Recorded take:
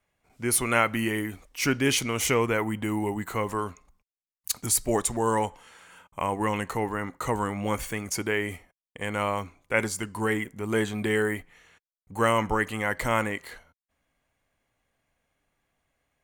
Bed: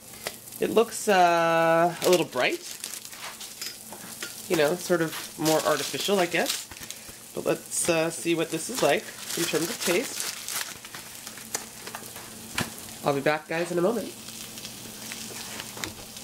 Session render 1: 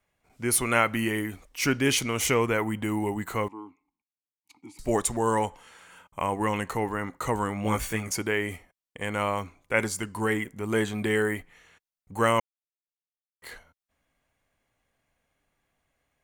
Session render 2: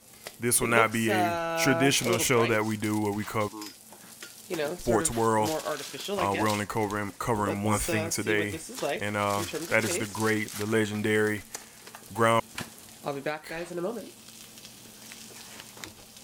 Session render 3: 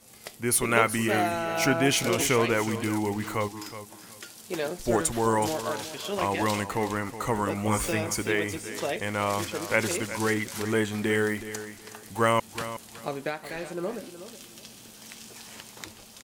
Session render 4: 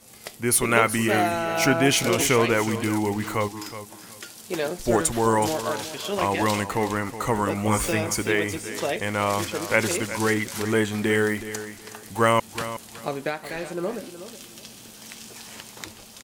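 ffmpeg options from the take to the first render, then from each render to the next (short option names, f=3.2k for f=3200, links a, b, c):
-filter_complex "[0:a]asettb=1/sr,asplit=3[a][b][c];[a]atrim=end=3.484[d];[b]atrim=start=3.48:end=4.79,asetpts=PTS-STARTPTS,afade=t=in:d=0.004:c=qsin,afade=t=out:st=1.306:d=0.004:c=qsin,asplit=3[e][f][g];[e]bandpass=f=300:t=q:w=8,volume=0dB[h];[f]bandpass=f=870:t=q:w=8,volume=-6dB[i];[g]bandpass=f=2.24k:t=q:w=8,volume=-9dB[j];[h][i][j]amix=inputs=3:normalize=0[k];[c]atrim=start=4.786[l];[d][k]acrossfade=d=0.004:c1=hsin:c2=qsin[m];[m][l]acrossfade=d=0.004:c1=qsin:c2=hsin,asettb=1/sr,asplit=3[n][o][p];[n]atrim=end=7.634[q];[o]atrim=start=7.63:end=8.12,asetpts=PTS-STARTPTS,afade=t=in:d=0.004:c=qsin,afade=t=out:st=0.486:d=0.004:c=qsin,asplit=2[r][s];[s]adelay=18,volume=-2.5dB[t];[r][t]amix=inputs=2:normalize=0,atrim=end_sample=21609[u];[p]atrim=start=8.116[v];[q][u]acrossfade=d=0.004:c1=hsin:c2=qsin[w];[w][v]acrossfade=d=0.004:c1=qsin:c2=hsin,asplit=3[x][y][z];[x]atrim=end=12.4,asetpts=PTS-STARTPTS,afade=t=out:st=12.396:d=0.004:c=hsin[aa];[y]atrim=start=12.4:end=13.42,asetpts=PTS-STARTPTS,volume=0[ab];[z]atrim=start=13.42,asetpts=PTS-STARTPTS,afade=t=in:d=0.004:c=hsin[ac];[aa][ab][ac]concat=n=3:v=0:a=1"
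-filter_complex "[1:a]volume=-8dB[a];[0:a][a]amix=inputs=2:normalize=0"
-af "aecho=1:1:370|740|1110:0.237|0.0545|0.0125"
-af "volume=3.5dB,alimiter=limit=-3dB:level=0:latency=1"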